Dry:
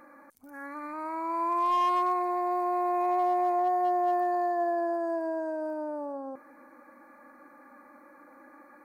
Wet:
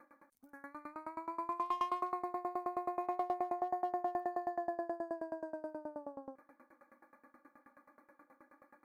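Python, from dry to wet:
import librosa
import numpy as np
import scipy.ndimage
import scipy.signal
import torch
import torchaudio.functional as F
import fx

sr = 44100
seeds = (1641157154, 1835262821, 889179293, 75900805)

y = fx.tremolo_decay(x, sr, direction='decaying', hz=9.4, depth_db=22)
y = F.gain(torch.from_numpy(y), -4.0).numpy()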